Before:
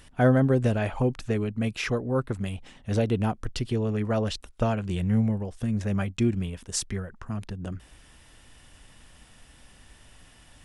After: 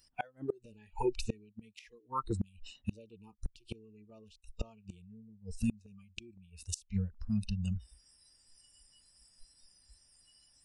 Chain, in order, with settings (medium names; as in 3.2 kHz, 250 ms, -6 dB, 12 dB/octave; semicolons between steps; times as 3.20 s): spectral noise reduction 27 dB; inverted gate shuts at -25 dBFS, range -31 dB; trim +4 dB